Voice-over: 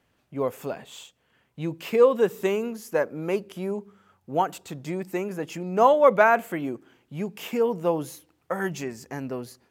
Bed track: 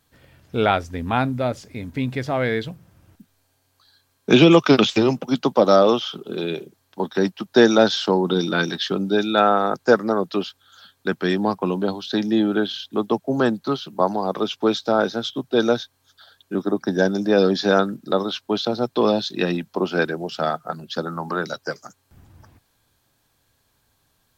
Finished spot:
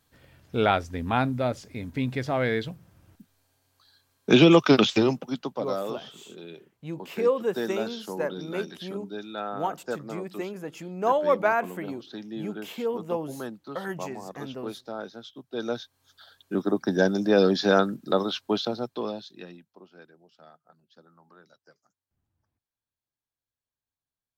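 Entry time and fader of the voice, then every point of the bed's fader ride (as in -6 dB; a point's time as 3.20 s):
5.25 s, -5.5 dB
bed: 5.03 s -3.5 dB
5.68 s -17 dB
15.44 s -17 dB
16.06 s -3 dB
18.53 s -3 dB
19.89 s -30 dB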